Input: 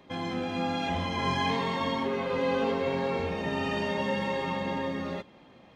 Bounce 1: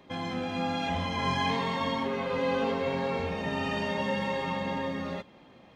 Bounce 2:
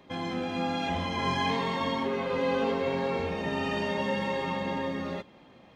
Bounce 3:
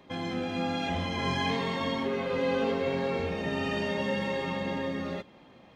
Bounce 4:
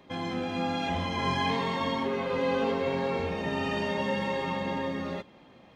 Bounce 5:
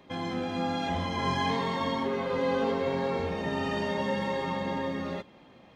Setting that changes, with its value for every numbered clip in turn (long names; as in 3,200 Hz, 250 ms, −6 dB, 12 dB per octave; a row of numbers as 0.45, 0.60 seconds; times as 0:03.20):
dynamic equaliser, frequency: 360, 110, 960, 6,500, 2,600 Hertz